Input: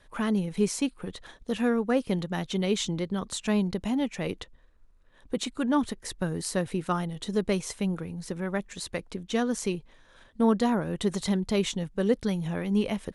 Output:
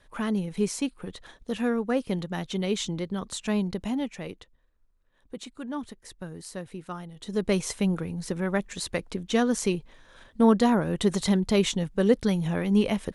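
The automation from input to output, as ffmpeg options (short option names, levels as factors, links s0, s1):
-af "volume=3.76,afade=t=out:st=3.92:d=0.48:silence=0.398107,afade=t=in:st=7.16:d=0.44:silence=0.237137"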